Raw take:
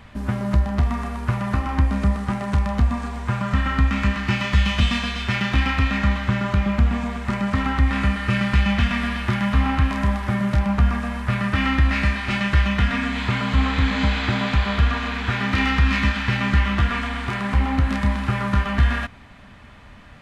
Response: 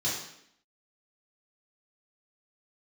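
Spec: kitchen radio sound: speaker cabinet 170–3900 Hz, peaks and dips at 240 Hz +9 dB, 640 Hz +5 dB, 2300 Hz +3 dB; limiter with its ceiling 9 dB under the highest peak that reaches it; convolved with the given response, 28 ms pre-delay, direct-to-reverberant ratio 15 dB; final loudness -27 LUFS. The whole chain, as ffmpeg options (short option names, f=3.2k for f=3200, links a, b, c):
-filter_complex "[0:a]alimiter=limit=-16.5dB:level=0:latency=1,asplit=2[a][b];[1:a]atrim=start_sample=2205,adelay=28[c];[b][c]afir=irnorm=-1:irlink=0,volume=-22.5dB[d];[a][d]amix=inputs=2:normalize=0,highpass=170,equalizer=f=240:t=q:w=4:g=9,equalizer=f=640:t=q:w=4:g=5,equalizer=f=2.3k:t=q:w=4:g=3,lowpass=f=3.9k:w=0.5412,lowpass=f=3.9k:w=1.3066,volume=-2dB"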